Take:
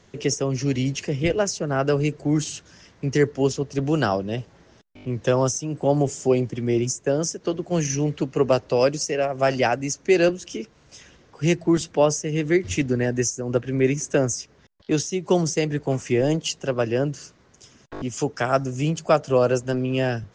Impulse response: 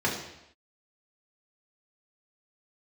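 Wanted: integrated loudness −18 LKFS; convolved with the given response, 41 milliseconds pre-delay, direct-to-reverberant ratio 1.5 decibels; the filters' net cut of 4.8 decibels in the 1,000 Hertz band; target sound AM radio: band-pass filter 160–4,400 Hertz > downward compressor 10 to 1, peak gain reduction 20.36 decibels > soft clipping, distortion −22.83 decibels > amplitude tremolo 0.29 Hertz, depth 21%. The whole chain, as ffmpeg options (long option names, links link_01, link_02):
-filter_complex "[0:a]equalizer=frequency=1000:width_type=o:gain=-7.5,asplit=2[link_01][link_02];[1:a]atrim=start_sample=2205,adelay=41[link_03];[link_02][link_03]afir=irnorm=-1:irlink=0,volume=-13dB[link_04];[link_01][link_04]amix=inputs=2:normalize=0,highpass=160,lowpass=4400,acompressor=threshold=-32dB:ratio=10,asoftclip=threshold=-25.5dB,tremolo=f=0.29:d=0.21,volume=20dB"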